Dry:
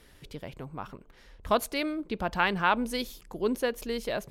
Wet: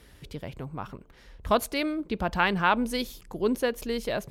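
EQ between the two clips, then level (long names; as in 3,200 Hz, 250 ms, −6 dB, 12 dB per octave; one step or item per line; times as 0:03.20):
high-pass filter 42 Hz
low-shelf EQ 130 Hz +7 dB
+1.5 dB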